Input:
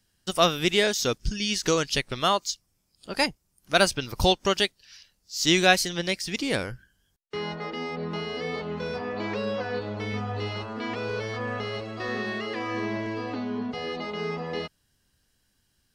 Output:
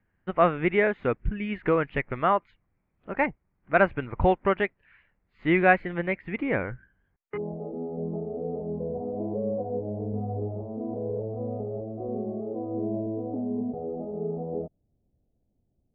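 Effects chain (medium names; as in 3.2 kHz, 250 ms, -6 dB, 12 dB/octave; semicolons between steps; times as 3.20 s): elliptic low-pass 2.2 kHz, stop band 60 dB, from 7.36 s 700 Hz; trim +1.5 dB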